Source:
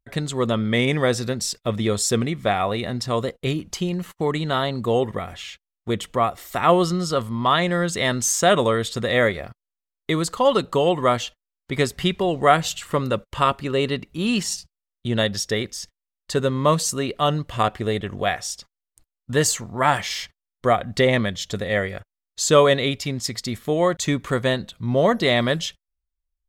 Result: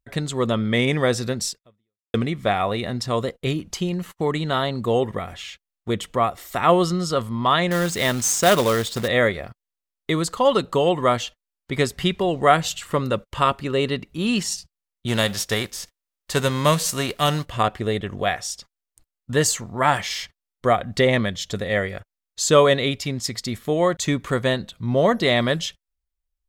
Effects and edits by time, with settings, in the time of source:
1.48–2.14 s: fade out exponential
7.71–9.08 s: companded quantiser 4-bit
15.07–17.44 s: formants flattened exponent 0.6

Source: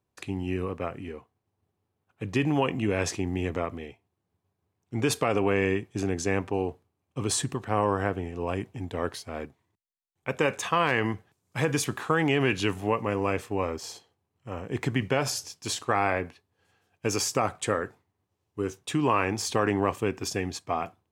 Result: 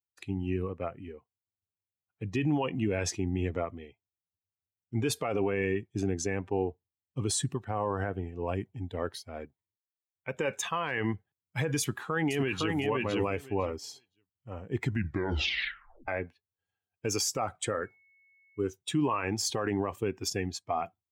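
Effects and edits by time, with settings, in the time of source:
11.79–12.76 s: echo throw 510 ms, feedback 20%, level -4 dB
14.83 s: tape stop 1.25 s
17.82–18.67 s: whistle 2.2 kHz -56 dBFS
whole clip: expander on every frequency bin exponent 1.5; peak limiter -23.5 dBFS; trim +3.5 dB

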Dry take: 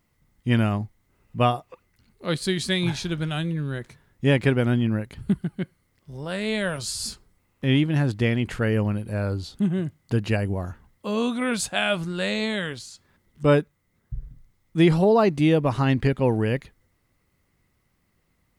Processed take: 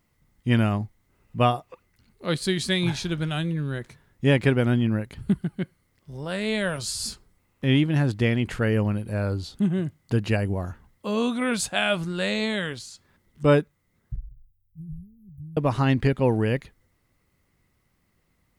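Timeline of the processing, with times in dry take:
14.16–15.57 s: inverse Chebyshev band-stop 540–4800 Hz, stop band 80 dB

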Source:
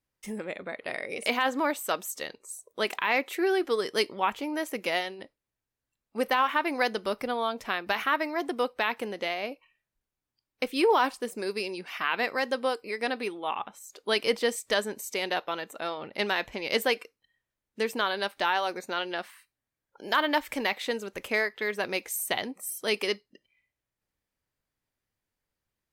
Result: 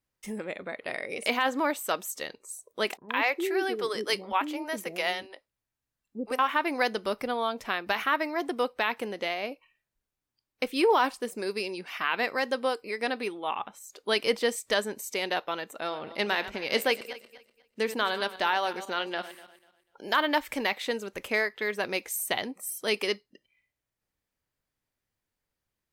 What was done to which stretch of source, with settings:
2.97–6.39 s: bands offset in time lows, highs 120 ms, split 410 Hz
15.78–20.11 s: backward echo that repeats 123 ms, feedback 48%, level -13 dB

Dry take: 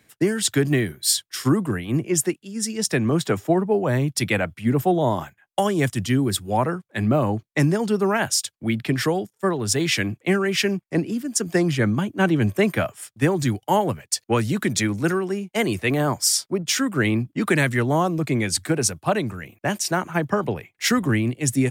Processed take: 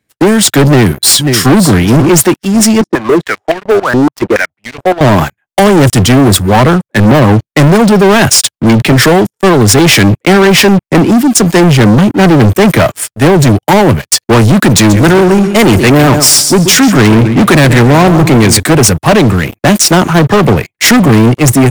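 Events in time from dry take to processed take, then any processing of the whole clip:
0.65–1.56 s: echo throw 540 ms, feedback 20%, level -13.5 dB
2.81–5.01 s: step-sequenced band-pass 7.1 Hz 310–2600 Hz
14.75–18.60 s: feedback delay 133 ms, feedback 28%, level -13 dB
whole clip: bass shelf 500 Hz +4.5 dB; level rider gain up to 6.5 dB; waveshaping leveller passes 5

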